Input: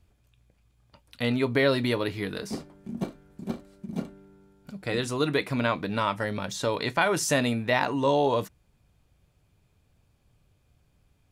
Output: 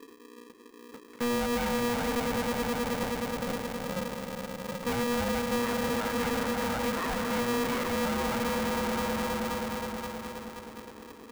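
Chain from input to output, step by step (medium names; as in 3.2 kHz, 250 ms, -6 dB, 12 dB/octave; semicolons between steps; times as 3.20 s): in parallel at -1.5 dB: compression, threshold -41 dBFS, peak gain reduction 20.5 dB; on the sum: elliptic low-pass 1.8 kHz; on a send: echo with a slow build-up 105 ms, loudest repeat 5, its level -12 dB; on the sum: peak limiter -19.5 dBFS, peak gain reduction 10 dB; resonant low shelf 170 Hz +7 dB, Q 3; saturation -25.5 dBFS, distortion -10 dB; peaking EQ 270 Hz -3 dB; polarity switched at an audio rate 360 Hz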